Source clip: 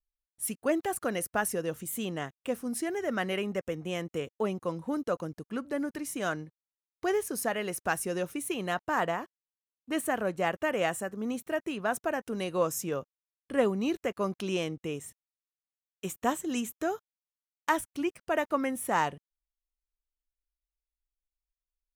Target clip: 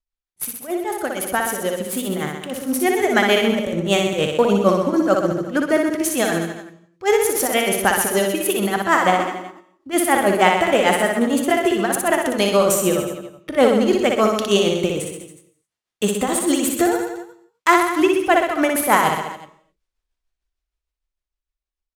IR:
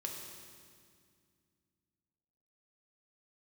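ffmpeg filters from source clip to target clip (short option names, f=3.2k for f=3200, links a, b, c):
-filter_complex "[0:a]aemphasis=mode=production:type=cd,dynaudnorm=f=310:g=11:m=15dB,asplit=2[a][b];[b]alimiter=limit=-11.5dB:level=0:latency=1:release=83,volume=-1dB[c];[a][c]amix=inputs=2:normalize=0,tremolo=f=6.6:d=0.86,asetrate=48091,aresample=44100,atempo=0.917004,adynamicsmooth=sensitivity=7.5:basefreq=4.4k,aecho=1:1:60|126|198.6|278.5|366.3:0.631|0.398|0.251|0.158|0.1,asplit=2[d][e];[1:a]atrim=start_sample=2205,afade=t=out:st=0.32:d=0.01,atrim=end_sample=14553[f];[e][f]afir=irnorm=-1:irlink=0,volume=-7.5dB[g];[d][g]amix=inputs=2:normalize=0,volume=-2.5dB"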